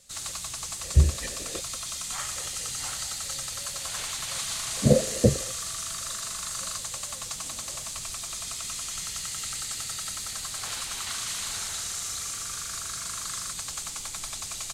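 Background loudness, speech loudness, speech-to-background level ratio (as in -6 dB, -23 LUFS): -31.5 LUFS, -25.0 LUFS, 6.5 dB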